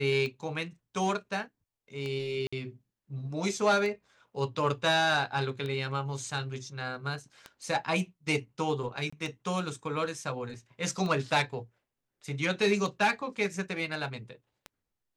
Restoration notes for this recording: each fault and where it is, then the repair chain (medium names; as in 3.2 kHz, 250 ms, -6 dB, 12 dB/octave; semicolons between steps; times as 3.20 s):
tick 33 1/3 rpm -24 dBFS
2.47–2.52 s: dropout 55 ms
9.10–9.12 s: dropout 25 ms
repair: de-click; interpolate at 2.47 s, 55 ms; interpolate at 9.10 s, 25 ms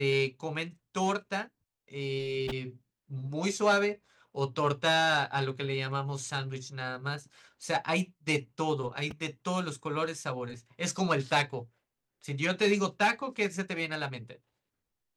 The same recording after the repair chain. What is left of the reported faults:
nothing left